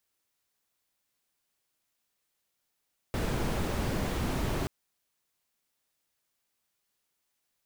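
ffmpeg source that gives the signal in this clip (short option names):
-f lavfi -i "anoisesrc=c=brown:a=0.148:d=1.53:r=44100:seed=1"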